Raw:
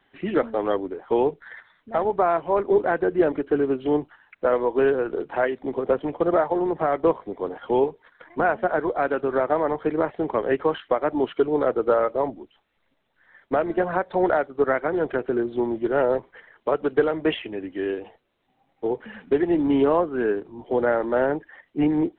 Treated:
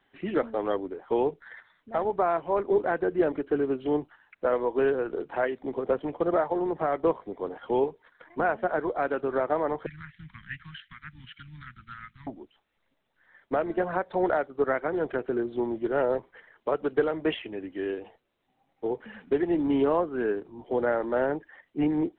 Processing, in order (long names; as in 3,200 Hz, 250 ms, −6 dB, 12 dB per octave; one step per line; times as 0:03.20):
0:09.86–0:12.27: elliptic band-stop filter 160–1,700 Hz, stop band 70 dB
level −4.5 dB